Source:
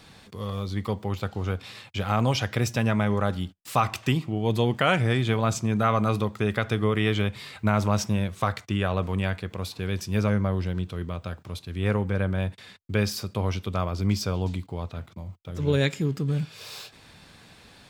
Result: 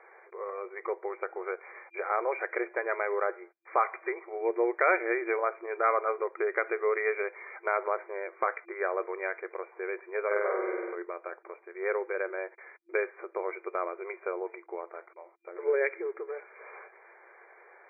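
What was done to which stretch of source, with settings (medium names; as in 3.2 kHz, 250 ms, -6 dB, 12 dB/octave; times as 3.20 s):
10.26–10.95 s: flutter echo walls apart 8.3 m, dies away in 1.3 s
whole clip: FFT band-pass 340–2400 Hz; dynamic bell 850 Hz, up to -5 dB, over -39 dBFS, Q 1.3; trim +1 dB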